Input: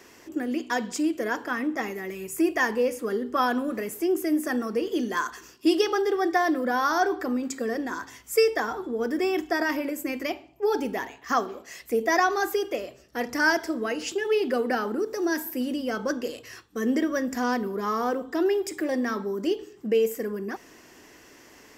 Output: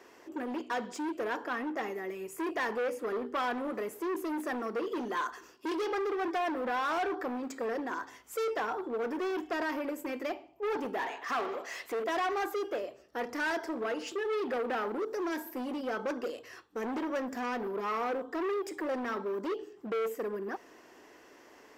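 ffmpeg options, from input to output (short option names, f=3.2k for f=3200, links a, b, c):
-filter_complex "[0:a]equalizer=f=2.2k:t=o:w=1.4:g=-5.5,asoftclip=type=hard:threshold=-28dB,asettb=1/sr,asplit=3[a][b][c];[a]atrim=end=10.994[d];[b]atrim=start=10.99:end=12.04,asetpts=PTS-STARTPTS,afade=t=in:d=0.004:c=qsin,afade=t=out:st=1.046:d=0.004:c=qsin,asplit=2[e][f];[f]highpass=f=720:p=1,volume=19dB,asoftclip=type=tanh:threshold=-28dB[g];[e][g]amix=inputs=2:normalize=0,lowpass=f=6.7k:p=1,volume=-6dB[h];[c]atrim=start=12.036[i];[d][h]acrossfade=d=0.004:c1=hsin:c2=qsin[j];[j][i]acrossfade=d=0.004:c1=qsin:c2=hsin,bass=f=250:g=-14,treble=f=4k:g=-12"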